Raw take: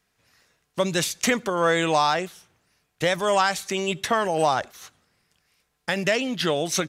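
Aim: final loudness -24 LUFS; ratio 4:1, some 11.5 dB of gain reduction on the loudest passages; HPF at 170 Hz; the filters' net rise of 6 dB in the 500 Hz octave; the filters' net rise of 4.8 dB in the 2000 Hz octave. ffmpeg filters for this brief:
-af "highpass=170,equalizer=f=500:t=o:g=7,equalizer=f=2k:t=o:g=5.5,acompressor=threshold=-26dB:ratio=4,volume=5dB"

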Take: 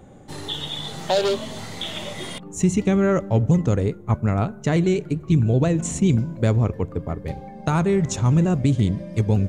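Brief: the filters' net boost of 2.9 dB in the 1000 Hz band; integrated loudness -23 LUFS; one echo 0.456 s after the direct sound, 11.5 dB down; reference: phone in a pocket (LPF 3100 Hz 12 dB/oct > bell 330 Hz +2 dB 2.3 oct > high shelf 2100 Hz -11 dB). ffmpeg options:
-af "lowpass=3.1k,equalizer=f=330:t=o:w=2.3:g=2,equalizer=f=1k:t=o:g=5.5,highshelf=f=2.1k:g=-11,aecho=1:1:456:0.266,volume=-3dB"

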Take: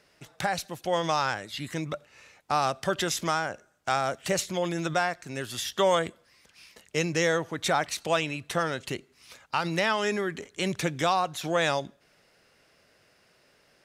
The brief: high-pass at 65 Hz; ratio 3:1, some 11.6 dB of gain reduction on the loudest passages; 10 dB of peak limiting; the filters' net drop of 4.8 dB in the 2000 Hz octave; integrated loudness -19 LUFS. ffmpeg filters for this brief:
-af "highpass=65,equalizer=f=2k:t=o:g=-6.5,acompressor=threshold=-37dB:ratio=3,volume=22.5dB,alimiter=limit=-7dB:level=0:latency=1"

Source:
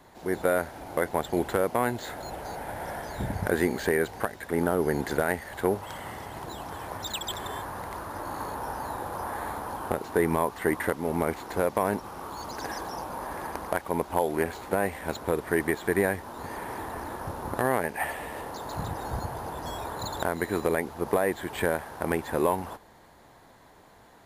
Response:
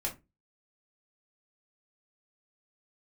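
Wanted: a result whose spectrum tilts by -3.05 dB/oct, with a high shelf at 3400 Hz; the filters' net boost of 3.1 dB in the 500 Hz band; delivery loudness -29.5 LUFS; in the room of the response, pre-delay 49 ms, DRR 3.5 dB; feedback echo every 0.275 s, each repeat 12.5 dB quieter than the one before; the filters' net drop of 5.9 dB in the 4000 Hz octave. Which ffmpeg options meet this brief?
-filter_complex "[0:a]equalizer=f=500:t=o:g=4,highshelf=f=3.4k:g=-3.5,equalizer=f=4k:t=o:g=-5,aecho=1:1:275|550|825:0.237|0.0569|0.0137,asplit=2[a][b];[1:a]atrim=start_sample=2205,adelay=49[c];[b][c]afir=irnorm=-1:irlink=0,volume=-6.5dB[d];[a][d]amix=inputs=2:normalize=0,volume=-3dB"

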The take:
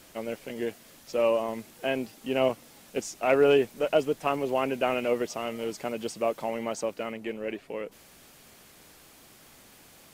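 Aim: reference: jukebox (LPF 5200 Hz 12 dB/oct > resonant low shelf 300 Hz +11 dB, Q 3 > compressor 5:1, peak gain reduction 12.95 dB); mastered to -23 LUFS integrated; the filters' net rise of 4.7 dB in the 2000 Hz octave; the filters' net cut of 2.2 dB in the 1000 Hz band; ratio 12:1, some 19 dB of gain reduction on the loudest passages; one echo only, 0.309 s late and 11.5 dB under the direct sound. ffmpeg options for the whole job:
-af "equalizer=f=1k:t=o:g=-3,equalizer=f=2k:t=o:g=7.5,acompressor=threshold=-36dB:ratio=12,lowpass=5.2k,lowshelf=f=300:t=q:w=3:g=11,aecho=1:1:309:0.266,acompressor=threshold=-38dB:ratio=5,volume=19.5dB"

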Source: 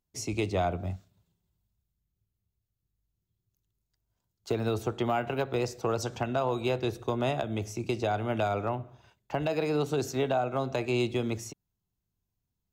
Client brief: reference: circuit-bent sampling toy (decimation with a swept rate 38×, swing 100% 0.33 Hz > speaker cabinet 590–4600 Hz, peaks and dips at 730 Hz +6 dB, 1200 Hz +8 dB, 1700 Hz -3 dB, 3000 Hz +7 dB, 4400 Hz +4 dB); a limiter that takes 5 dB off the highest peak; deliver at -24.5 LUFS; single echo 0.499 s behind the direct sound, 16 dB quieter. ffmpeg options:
-af "alimiter=limit=-24dB:level=0:latency=1,aecho=1:1:499:0.158,acrusher=samples=38:mix=1:aa=0.000001:lfo=1:lforange=38:lforate=0.33,highpass=590,equalizer=f=730:t=q:w=4:g=6,equalizer=f=1.2k:t=q:w=4:g=8,equalizer=f=1.7k:t=q:w=4:g=-3,equalizer=f=3k:t=q:w=4:g=7,equalizer=f=4.4k:t=q:w=4:g=4,lowpass=f=4.6k:w=0.5412,lowpass=f=4.6k:w=1.3066,volume=11dB"

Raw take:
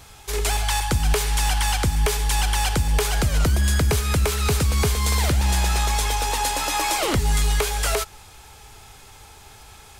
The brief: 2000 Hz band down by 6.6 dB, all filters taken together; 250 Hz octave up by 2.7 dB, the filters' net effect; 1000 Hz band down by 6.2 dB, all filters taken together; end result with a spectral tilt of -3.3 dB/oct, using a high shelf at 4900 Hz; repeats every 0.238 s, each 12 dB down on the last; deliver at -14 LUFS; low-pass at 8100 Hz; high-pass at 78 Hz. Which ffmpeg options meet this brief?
-af "highpass=78,lowpass=8.1k,equalizer=f=250:t=o:g=4.5,equalizer=f=1k:t=o:g=-7,equalizer=f=2k:t=o:g=-8,highshelf=f=4.9k:g=7,aecho=1:1:238|476|714:0.251|0.0628|0.0157,volume=9dB"

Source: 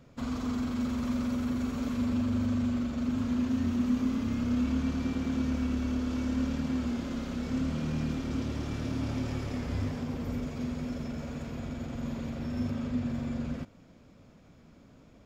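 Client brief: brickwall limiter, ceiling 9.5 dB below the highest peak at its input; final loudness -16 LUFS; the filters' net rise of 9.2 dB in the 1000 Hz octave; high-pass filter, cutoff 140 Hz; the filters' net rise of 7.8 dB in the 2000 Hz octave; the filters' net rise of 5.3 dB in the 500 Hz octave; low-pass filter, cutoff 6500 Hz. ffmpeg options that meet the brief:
-af "highpass=140,lowpass=6.5k,equalizer=f=500:t=o:g=4,equalizer=f=1k:t=o:g=8.5,equalizer=f=2k:t=o:g=7,volume=19dB,alimiter=limit=-8dB:level=0:latency=1"

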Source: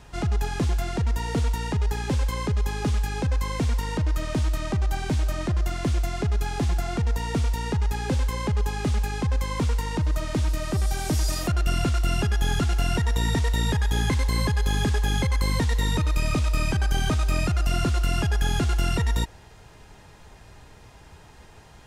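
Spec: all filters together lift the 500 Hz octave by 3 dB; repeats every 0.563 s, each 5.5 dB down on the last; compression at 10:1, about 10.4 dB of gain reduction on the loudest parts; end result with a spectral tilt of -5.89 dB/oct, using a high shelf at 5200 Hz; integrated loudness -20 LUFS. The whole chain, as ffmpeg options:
-af "equalizer=f=500:t=o:g=4,highshelf=f=5.2k:g=-7.5,acompressor=threshold=-30dB:ratio=10,aecho=1:1:563|1126|1689|2252|2815|3378|3941:0.531|0.281|0.149|0.079|0.0419|0.0222|0.0118,volume=13dB"

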